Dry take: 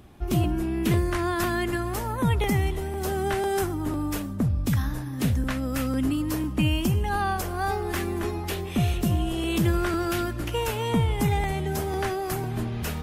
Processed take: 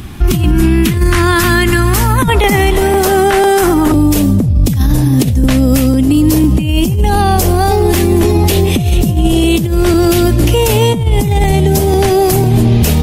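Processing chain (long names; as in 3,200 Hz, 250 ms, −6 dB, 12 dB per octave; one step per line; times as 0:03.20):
parametric band 580 Hz −12.5 dB 1.4 octaves, from 0:02.28 100 Hz, from 0:03.92 1,400 Hz
compressor whose output falls as the input rises −27 dBFS, ratio −0.5
boost into a limiter +24 dB
level −1 dB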